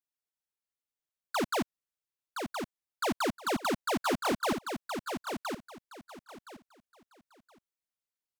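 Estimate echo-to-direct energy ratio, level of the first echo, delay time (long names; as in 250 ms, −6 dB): −6.0 dB, −6.0 dB, 1,019 ms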